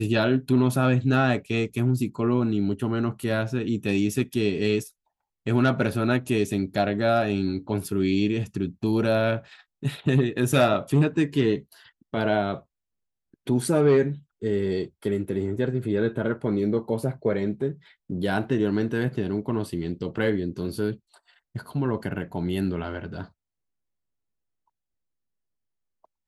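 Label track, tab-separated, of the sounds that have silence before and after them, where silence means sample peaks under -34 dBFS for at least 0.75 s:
13.470000	23.240000	sound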